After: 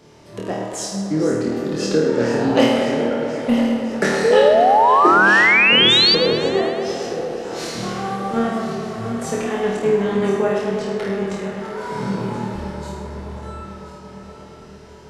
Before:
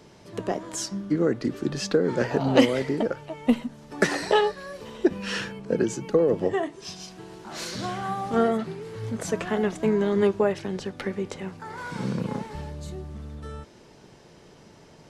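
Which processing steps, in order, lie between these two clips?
feedback delay that plays each chunk backwards 515 ms, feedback 67%, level −11 dB
flutter between parallel walls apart 4.4 metres, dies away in 0.68 s
sound drawn into the spectrogram rise, 0:04.24–0:06.15, 440–4,800 Hz −14 dBFS
tape delay 113 ms, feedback 88%, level −8 dB, low-pass 4,200 Hz

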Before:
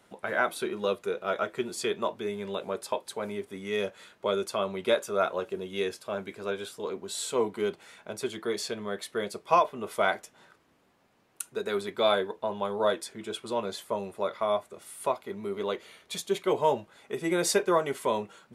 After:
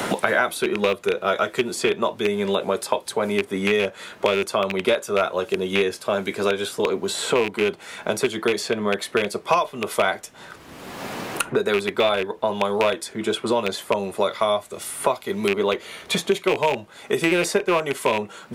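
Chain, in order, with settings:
loose part that buzzes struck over −37 dBFS, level −20 dBFS
multiband upward and downward compressor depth 100%
level +7 dB

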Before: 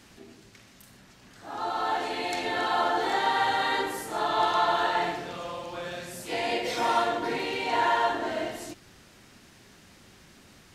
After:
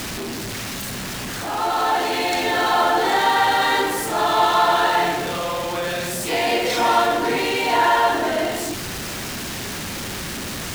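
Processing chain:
converter with a step at zero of −30 dBFS
level +6 dB

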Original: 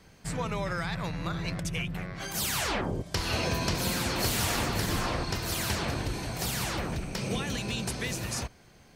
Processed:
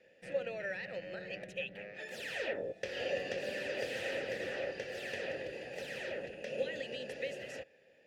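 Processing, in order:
change of speed 1.11×
formant filter e
level +5 dB

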